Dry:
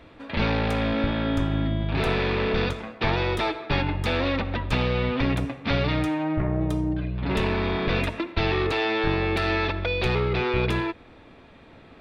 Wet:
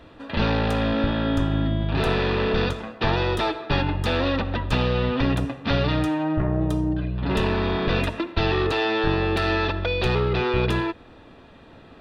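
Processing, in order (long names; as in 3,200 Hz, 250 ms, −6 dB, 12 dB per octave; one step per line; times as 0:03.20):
notch filter 2,200 Hz, Q 5.8
level +2 dB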